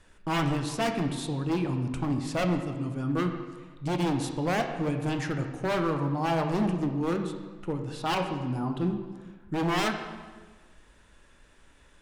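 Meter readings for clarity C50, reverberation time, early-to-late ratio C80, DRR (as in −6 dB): 7.0 dB, 1.4 s, 8.5 dB, 5.0 dB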